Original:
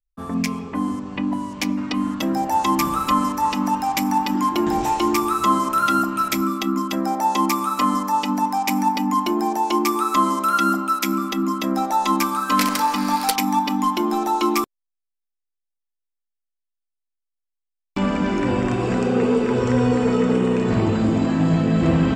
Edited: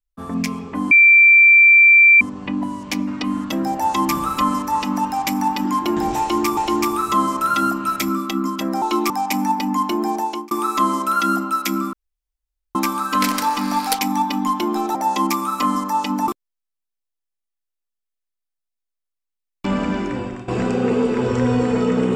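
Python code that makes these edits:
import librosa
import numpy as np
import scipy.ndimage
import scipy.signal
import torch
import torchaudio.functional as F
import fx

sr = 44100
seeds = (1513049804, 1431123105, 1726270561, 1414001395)

y = fx.edit(x, sr, fx.insert_tone(at_s=0.91, length_s=1.3, hz=2350.0, db=-6.5),
    fx.repeat(start_s=4.89, length_s=0.38, count=2),
    fx.swap(start_s=7.14, length_s=1.33, other_s=14.32, other_length_s=0.28),
    fx.fade_out_span(start_s=9.56, length_s=0.32),
    fx.room_tone_fill(start_s=11.3, length_s=0.82),
    fx.fade_out_to(start_s=18.18, length_s=0.62, floor_db=-17.0), tone=tone)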